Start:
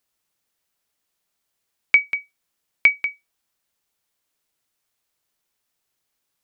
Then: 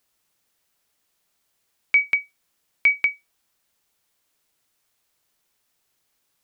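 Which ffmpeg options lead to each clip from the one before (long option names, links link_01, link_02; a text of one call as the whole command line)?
ffmpeg -i in.wav -af "alimiter=level_in=14dB:limit=-1dB:release=50:level=0:latency=1,volume=-9dB" out.wav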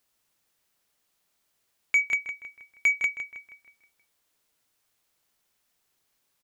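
ffmpeg -i in.wav -filter_complex "[0:a]asoftclip=type=tanh:threshold=-12.5dB,asplit=2[link_01][link_02];[link_02]adelay=159,lowpass=frequency=3400:poles=1,volume=-8dB,asplit=2[link_03][link_04];[link_04]adelay=159,lowpass=frequency=3400:poles=1,volume=0.51,asplit=2[link_05][link_06];[link_06]adelay=159,lowpass=frequency=3400:poles=1,volume=0.51,asplit=2[link_07][link_08];[link_08]adelay=159,lowpass=frequency=3400:poles=1,volume=0.51,asplit=2[link_09][link_10];[link_10]adelay=159,lowpass=frequency=3400:poles=1,volume=0.51,asplit=2[link_11][link_12];[link_12]adelay=159,lowpass=frequency=3400:poles=1,volume=0.51[link_13];[link_03][link_05][link_07][link_09][link_11][link_13]amix=inputs=6:normalize=0[link_14];[link_01][link_14]amix=inputs=2:normalize=0,volume=-2.5dB" out.wav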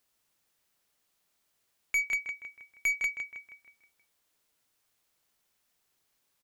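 ffmpeg -i in.wav -af "aeval=exprs='(tanh(12.6*val(0)+0.1)-tanh(0.1))/12.6':channel_layout=same,volume=-1.5dB" out.wav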